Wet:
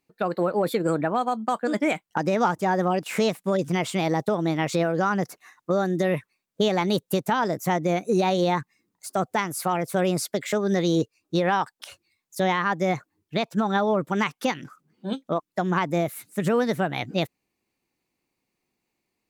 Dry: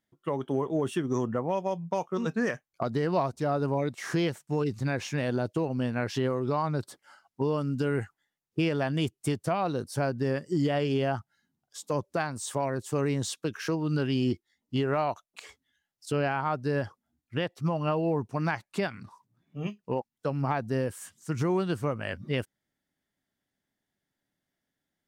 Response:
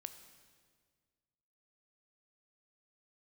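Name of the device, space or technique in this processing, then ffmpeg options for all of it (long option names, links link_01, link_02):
nightcore: -af "asetrate=57330,aresample=44100,volume=5dB"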